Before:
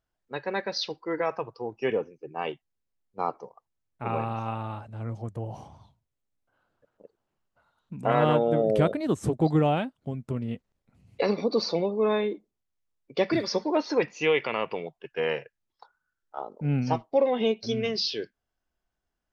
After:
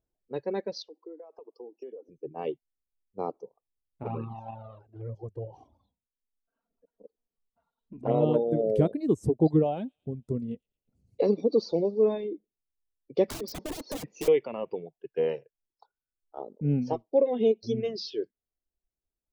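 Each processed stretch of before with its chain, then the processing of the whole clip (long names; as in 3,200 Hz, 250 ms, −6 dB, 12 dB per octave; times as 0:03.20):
0:00.82–0:02.09: Butterworth high-pass 260 Hz + parametric band 2,200 Hz −9.5 dB 1.2 octaves + downward compressor 16 to 1, threshold −40 dBFS
0:04.03–0:08.34: low-pass filter 4,700 Hz + parametric band 1,100 Hz +3 dB 1.5 octaves + flanger swept by the level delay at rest 4.4 ms, full sweep at −19 dBFS
0:09.57–0:12.28: parametric band 1,800 Hz −3.5 dB 1.3 octaves + delay with a high-pass on its return 113 ms, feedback 56%, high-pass 4,400 Hz, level −10 dB
0:13.28–0:14.28: wrap-around overflow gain 25 dB + multiband upward and downward compressor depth 100%
whole clip: reverb reduction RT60 1.7 s; drawn EQ curve 150 Hz 0 dB, 440 Hz +4 dB, 1,400 Hz −15 dB, 6,400 Hz −8 dB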